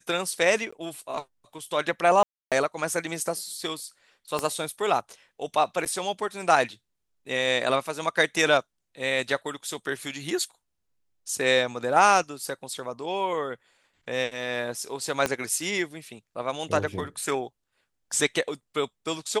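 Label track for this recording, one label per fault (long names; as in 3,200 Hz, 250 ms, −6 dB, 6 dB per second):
0.710000	0.720000	drop-out 15 ms
2.230000	2.520000	drop-out 287 ms
4.390000	4.390000	click −13 dBFS
5.850000	5.860000	drop-out 8.1 ms
15.260000	15.260000	click −10 dBFS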